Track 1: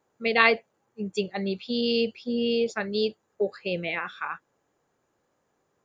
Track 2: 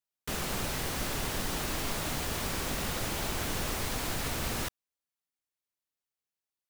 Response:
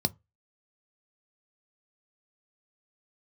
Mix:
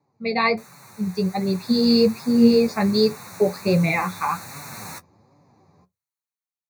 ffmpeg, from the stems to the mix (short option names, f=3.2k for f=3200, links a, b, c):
-filter_complex "[0:a]lowpass=5.5k,volume=0.5dB,asplit=2[a][b];[b]volume=-3.5dB[c];[1:a]highpass=220,adelay=300,volume=-7.5dB,asplit=2[d][e];[e]volume=-13.5dB[f];[2:a]atrim=start_sample=2205[g];[c][f]amix=inputs=2:normalize=0[h];[h][g]afir=irnorm=-1:irlink=0[i];[a][d][i]amix=inputs=3:normalize=0,dynaudnorm=f=200:g=9:m=13dB,flanger=delay=6.9:depth=5:regen=24:speed=1.3:shape=sinusoidal,asuperstop=centerf=3100:order=4:qfactor=1.8"